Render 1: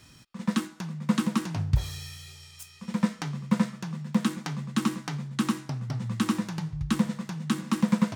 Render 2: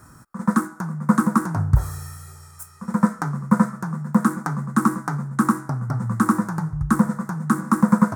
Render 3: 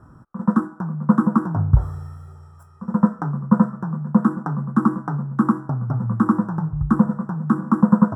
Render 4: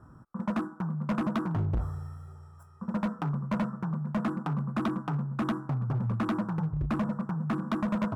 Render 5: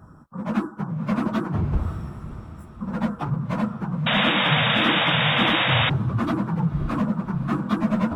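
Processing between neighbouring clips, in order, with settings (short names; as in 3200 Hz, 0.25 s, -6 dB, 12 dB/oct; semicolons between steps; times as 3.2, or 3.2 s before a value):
EQ curve 580 Hz 0 dB, 1400 Hz +8 dB, 2900 Hz -26 dB, 8900 Hz +1 dB; gain +7 dB
running mean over 20 samples; gain +2 dB
overloaded stage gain 19.5 dB; gain -5.5 dB
phase scrambler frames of 50 ms; diffused feedback echo 0.559 s, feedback 51%, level -13.5 dB; painted sound noise, 4.06–5.9, 450–3800 Hz -27 dBFS; gain +5.5 dB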